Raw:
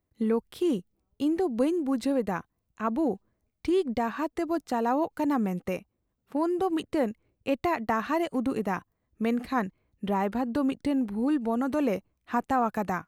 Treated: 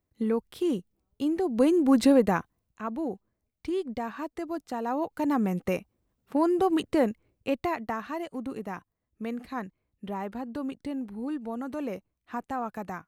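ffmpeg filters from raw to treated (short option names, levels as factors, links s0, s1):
-af "volume=6.31,afade=t=in:st=1.43:d=0.59:silence=0.354813,afade=t=out:st=2.02:d=0.83:silence=0.223872,afade=t=in:st=4.83:d=0.89:silence=0.398107,afade=t=out:st=6.97:d=1.07:silence=0.316228"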